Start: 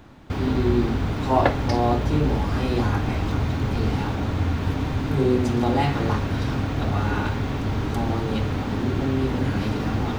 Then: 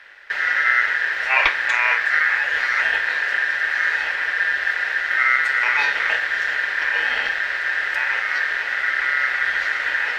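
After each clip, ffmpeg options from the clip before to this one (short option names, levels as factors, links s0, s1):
-af "aeval=exprs='val(0)*sin(2*PI*1700*n/s)':c=same,equalizer=f=125:t=o:w=1:g=-10,equalizer=f=250:t=o:w=1:g=-9,equalizer=f=500:t=o:w=1:g=8,equalizer=f=2000:t=o:w=1:g=7,equalizer=f=4000:t=o:w=1:g=6,volume=0.794"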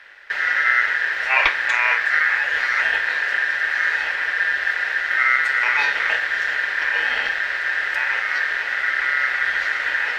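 -af anull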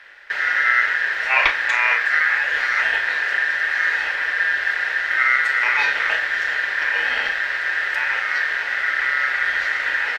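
-filter_complex "[0:a]asplit=2[s0][s1];[s1]adelay=36,volume=0.282[s2];[s0][s2]amix=inputs=2:normalize=0"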